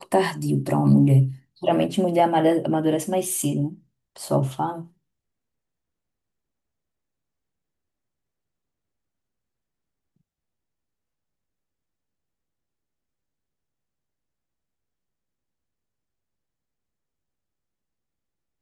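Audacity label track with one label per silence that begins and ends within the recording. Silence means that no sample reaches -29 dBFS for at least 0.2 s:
1.310000	1.630000	silence
3.690000	4.200000	silence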